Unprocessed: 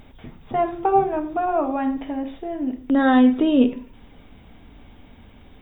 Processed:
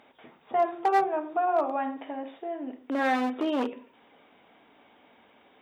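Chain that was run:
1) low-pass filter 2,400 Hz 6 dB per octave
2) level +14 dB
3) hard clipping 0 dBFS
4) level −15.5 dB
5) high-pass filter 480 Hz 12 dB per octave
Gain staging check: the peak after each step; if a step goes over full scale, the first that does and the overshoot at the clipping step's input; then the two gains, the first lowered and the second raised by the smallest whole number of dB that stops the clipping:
−5.0, +9.0, 0.0, −15.5, −13.0 dBFS
step 2, 9.0 dB
step 2 +5 dB, step 4 −6.5 dB

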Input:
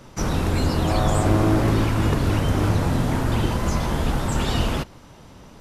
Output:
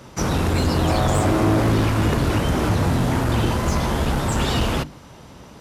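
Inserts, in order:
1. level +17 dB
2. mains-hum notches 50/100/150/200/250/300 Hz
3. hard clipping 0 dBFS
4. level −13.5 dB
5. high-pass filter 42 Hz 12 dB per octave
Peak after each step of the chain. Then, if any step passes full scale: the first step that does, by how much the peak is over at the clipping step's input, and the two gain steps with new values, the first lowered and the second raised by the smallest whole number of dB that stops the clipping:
+10.5, +9.5, 0.0, −13.5, −8.0 dBFS
step 1, 9.5 dB
step 1 +7 dB, step 4 −3.5 dB

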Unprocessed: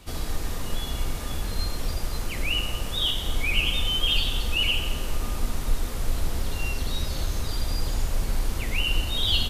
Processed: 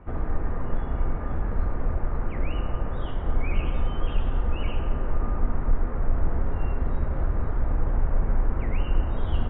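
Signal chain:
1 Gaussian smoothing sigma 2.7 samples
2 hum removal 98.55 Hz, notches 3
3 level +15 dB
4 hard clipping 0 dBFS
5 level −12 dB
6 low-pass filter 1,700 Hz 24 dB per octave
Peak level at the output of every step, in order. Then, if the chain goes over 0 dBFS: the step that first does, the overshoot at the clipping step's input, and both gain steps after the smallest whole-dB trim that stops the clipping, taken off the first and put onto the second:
−11.0, −11.0, +4.0, 0.0, −12.0, −12.0 dBFS
step 3, 4.0 dB
step 3 +11 dB, step 5 −8 dB

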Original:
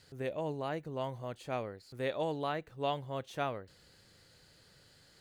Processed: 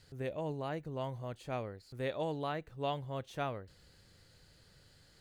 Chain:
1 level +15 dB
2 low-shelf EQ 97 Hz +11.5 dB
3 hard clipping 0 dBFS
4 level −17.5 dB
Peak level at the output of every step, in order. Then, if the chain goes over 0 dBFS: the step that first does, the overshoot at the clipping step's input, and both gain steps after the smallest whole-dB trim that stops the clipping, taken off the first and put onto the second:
−5.0, −5.5, −5.5, −23.0 dBFS
no step passes full scale

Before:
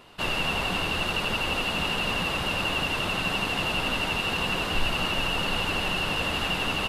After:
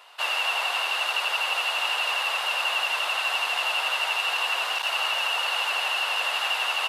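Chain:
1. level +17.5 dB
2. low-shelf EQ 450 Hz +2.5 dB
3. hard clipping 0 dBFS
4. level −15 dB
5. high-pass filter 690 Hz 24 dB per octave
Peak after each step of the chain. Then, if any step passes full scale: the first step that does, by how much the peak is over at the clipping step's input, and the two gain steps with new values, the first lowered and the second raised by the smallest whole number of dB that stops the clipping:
+4.0, +6.0, 0.0, −15.0, −14.0 dBFS
step 1, 6.0 dB
step 1 +11.5 dB, step 4 −9 dB

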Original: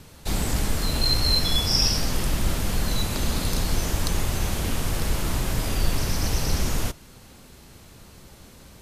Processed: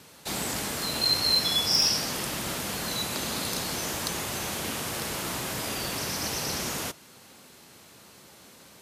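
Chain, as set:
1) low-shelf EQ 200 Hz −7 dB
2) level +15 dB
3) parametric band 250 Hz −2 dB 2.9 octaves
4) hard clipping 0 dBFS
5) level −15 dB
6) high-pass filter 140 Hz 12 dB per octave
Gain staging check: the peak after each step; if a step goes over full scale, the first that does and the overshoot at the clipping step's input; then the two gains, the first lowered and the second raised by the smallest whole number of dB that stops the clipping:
−8.5, +6.5, +6.5, 0.0, −15.0, −12.5 dBFS
step 2, 6.5 dB
step 2 +8 dB, step 5 −8 dB

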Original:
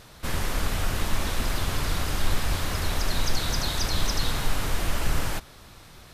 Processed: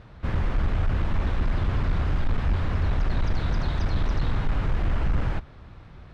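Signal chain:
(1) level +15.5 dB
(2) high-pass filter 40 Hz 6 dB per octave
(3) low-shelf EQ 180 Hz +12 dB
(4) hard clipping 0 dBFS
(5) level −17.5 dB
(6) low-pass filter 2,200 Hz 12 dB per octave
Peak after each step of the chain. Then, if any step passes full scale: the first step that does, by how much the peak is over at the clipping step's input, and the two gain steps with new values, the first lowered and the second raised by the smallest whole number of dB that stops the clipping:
+4.5, +1.0, +8.5, 0.0, −17.5, −17.5 dBFS
step 1, 8.5 dB
step 1 +6.5 dB, step 5 −8.5 dB

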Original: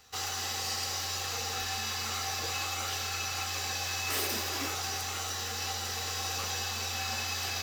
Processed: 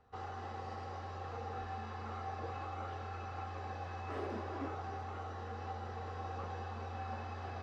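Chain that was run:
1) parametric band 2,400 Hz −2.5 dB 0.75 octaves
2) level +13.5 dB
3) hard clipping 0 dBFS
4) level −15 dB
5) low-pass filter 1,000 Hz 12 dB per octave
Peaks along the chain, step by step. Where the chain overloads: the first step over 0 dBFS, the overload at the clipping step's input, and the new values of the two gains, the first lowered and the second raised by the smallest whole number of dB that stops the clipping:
−19.5, −6.0, −6.0, −21.0, −28.0 dBFS
no step passes full scale

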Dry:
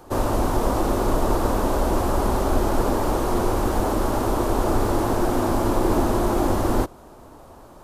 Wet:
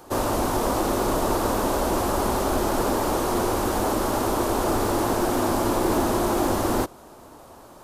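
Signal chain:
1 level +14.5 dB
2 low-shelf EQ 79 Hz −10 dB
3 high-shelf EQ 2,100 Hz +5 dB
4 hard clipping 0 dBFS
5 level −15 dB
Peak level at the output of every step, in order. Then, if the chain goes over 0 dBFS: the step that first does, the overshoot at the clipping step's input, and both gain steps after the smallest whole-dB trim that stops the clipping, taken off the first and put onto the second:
+6.5, +4.5, +5.0, 0.0, −15.0 dBFS
step 1, 5.0 dB
step 1 +9.5 dB, step 5 −10 dB

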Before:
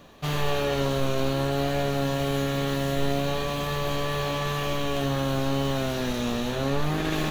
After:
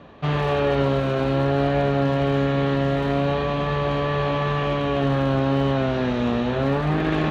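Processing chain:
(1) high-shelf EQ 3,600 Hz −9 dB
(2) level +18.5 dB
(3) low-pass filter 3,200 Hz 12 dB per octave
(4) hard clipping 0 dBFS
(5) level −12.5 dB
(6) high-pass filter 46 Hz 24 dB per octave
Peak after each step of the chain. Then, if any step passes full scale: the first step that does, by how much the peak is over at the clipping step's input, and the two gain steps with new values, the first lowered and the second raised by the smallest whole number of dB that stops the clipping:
−13.0, +5.5, +5.5, 0.0, −12.5, −9.5 dBFS
step 2, 5.5 dB
step 2 +12.5 dB, step 5 −6.5 dB

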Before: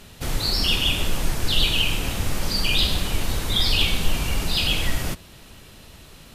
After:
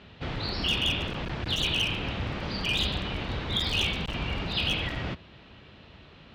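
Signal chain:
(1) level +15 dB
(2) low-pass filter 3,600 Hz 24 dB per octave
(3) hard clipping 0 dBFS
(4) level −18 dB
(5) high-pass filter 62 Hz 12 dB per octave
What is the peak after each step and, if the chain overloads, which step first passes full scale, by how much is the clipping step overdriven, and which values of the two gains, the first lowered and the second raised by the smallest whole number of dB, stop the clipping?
+9.5, +8.0, 0.0, −18.0, −14.0 dBFS
step 1, 8.0 dB
step 1 +7 dB, step 4 −10 dB

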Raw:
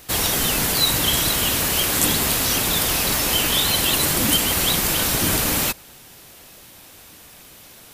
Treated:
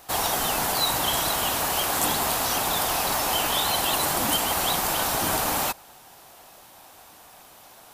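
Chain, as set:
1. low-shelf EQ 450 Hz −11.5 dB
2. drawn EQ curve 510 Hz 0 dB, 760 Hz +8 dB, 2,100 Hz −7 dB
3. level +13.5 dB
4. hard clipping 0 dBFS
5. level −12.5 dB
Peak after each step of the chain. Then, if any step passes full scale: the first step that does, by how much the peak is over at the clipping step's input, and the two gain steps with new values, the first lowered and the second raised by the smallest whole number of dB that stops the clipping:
−1.5, −8.5, +5.0, 0.0, −12.5 dBFS
step 3, 5.0 dB
step 3 +8.5 dB, step 5 −7.5 dB

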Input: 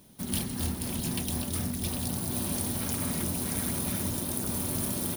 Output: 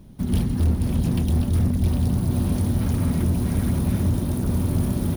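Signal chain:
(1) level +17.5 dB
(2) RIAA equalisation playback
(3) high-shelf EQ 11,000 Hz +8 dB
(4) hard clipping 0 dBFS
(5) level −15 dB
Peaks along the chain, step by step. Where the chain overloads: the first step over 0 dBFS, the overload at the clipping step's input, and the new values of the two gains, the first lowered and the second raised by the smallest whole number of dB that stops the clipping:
+5.5, +8.0, +8.0, 0.0, −15.0 dBFS
step 1, 8.0 dB
step 1 +9.5 dB, step 5 −7 dB

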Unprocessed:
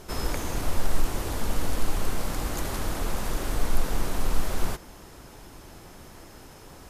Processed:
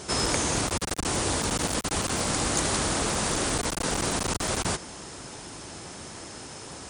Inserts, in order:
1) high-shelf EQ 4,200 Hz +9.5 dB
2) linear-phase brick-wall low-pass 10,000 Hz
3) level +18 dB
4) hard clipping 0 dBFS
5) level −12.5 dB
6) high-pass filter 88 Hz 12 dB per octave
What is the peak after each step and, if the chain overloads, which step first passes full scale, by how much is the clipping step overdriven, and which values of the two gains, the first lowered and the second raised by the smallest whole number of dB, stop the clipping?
−8.0, −8.5, +9.5, 0.0, −12.5, −9.5 dBFS
step 3, 9.5 dB
step 3 +8 dB, step 5 −2.5 dB

